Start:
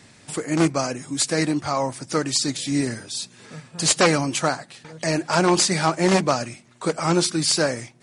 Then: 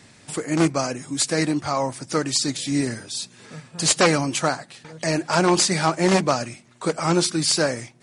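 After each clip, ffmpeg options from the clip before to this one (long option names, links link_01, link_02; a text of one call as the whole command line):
ffmpeg -i in.wav -af anull out.wav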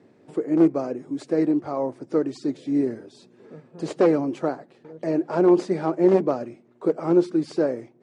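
ffmpeg -i in.wav -af "bandpass=frequency=380:width_type=q:width=2.1:csg=0,volume=5dB" out.wav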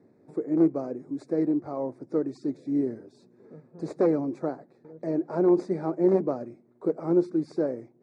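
ffmpeg -i in.wav -af "asuperstop=centerf=3000:order=4:qfactor=2.4,tiltshelf=frequency=970:gain=4.5,volume=-7.5dB" out.wav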